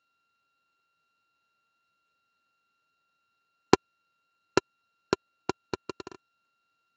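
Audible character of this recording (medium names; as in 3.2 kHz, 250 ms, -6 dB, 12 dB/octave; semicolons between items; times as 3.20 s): a buzz of ramps at a fixed pitch in blocks of 32 samples; Speex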